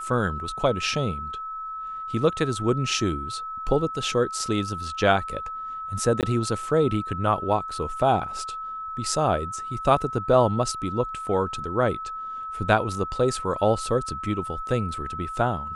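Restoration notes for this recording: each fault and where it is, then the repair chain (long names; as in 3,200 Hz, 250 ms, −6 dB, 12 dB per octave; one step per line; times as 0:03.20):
whistle 1,300 Hz −31 dBFS
0:06.21–0:06.23: drop-out 18 ms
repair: notch filter 1,300 Hz, Q 30
repair the gap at 0:06.21, 18 ms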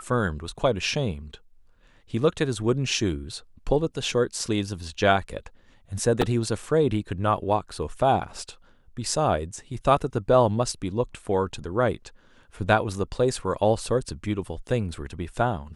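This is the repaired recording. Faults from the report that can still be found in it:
none of them is left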